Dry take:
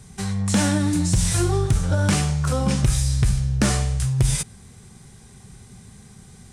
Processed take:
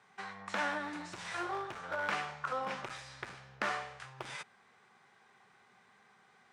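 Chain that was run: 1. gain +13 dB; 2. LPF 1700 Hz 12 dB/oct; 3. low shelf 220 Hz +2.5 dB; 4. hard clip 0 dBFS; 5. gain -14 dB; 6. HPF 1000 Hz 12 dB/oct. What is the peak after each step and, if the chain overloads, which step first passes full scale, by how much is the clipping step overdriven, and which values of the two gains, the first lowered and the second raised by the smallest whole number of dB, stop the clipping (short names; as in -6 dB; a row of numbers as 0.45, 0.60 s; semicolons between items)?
+4.5, +3.5, +5.0, 0.0, -14.0, -19.5 dBFS; step 1, 5.0 dB; step 1 +8 dB, step 5 -9 dB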